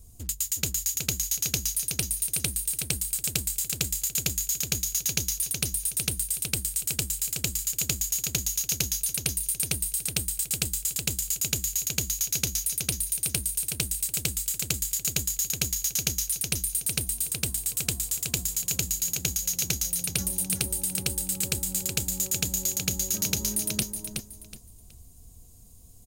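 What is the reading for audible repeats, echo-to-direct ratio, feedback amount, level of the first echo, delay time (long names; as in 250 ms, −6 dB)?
3, −5.5 dB, 26%, −6.0 dB, 371 ms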